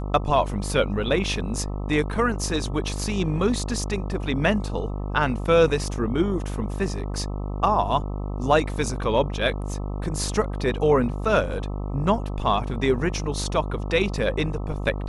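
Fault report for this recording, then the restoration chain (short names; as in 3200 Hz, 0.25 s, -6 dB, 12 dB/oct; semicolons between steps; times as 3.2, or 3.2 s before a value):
buzz 50 Hz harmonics 26 -29 dBFS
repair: de-hum 50 Hz, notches 26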